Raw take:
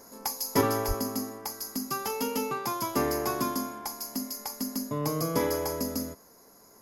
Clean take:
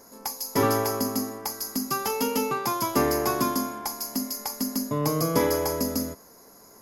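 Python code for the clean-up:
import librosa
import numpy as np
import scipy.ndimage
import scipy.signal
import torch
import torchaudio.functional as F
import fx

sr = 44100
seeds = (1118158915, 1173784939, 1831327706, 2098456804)

y = fx.highpass(x, sr, hz=140.0, slope=24, at=(0.87, 0.99), fade=0.02)
y = fx.gain(y, sr, db=fx.steps((0.0, 0.0), (0.61, 4.5)))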